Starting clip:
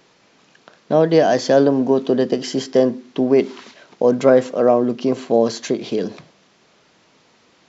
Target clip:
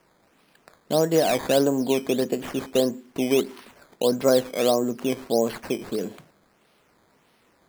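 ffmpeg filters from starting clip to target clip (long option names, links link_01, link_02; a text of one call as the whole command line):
ffmpeg -i in.wav -af "acrusher=samples=11:mix=1:aa=0.000001:lfo=1:lforange=11:lforate=1.6,volume=-6.5dB" out.wav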